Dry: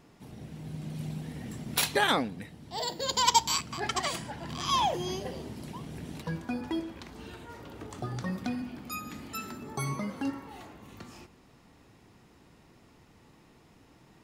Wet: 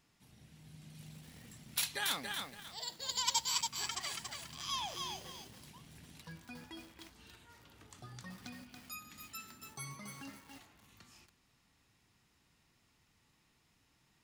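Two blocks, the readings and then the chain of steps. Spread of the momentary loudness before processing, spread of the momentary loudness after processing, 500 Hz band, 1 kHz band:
20 LU, 21 LU, -19.0 dB, -14.0 dB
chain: passive tone stack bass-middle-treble 5-5-5; lo-fi delay 0.281 s, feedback 35%, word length 9-bit, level -3.5 dB

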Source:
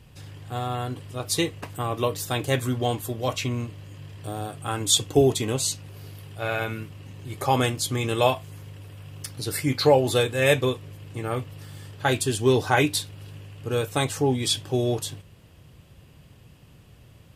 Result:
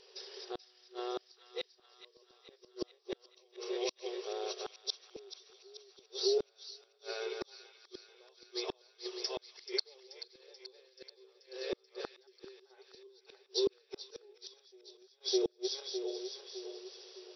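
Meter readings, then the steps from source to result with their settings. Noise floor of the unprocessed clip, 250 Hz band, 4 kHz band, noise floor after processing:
-52 dBFS, -16.5 dB, -11.0 dB, -71 dBFS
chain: regenerating reverse delay 0.304 s, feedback 57%, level -2.5 dB; FFT band-pass 360–5900 Hz; flipped gate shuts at -20 dBFS, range -41 dB; in parallel at -1 dB: compressor, threshold -45 dBFS, peak gain reduction 17 dB; on the sum: band shelf 1300 Hz -15 dB 2.9 oct; on a send: thin delay 0.433 s, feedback 64%, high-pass 1400 Hz, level -13 dB; on the sum: gain +3.5 dB

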